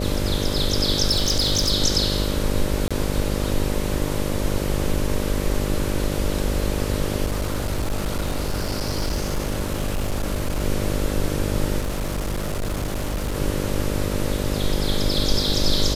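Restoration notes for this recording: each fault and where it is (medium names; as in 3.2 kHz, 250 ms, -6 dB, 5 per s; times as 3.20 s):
buzz 50 Hz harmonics 12 -26 dBFS
1.11–1.73 s: clipped -15 dBFS
2.88–2.91 s: dropout 26 ms
7.26–10.63 s: clipped -19.5 dBFS
11.79–13.37 s: clipped -21.5 dBFS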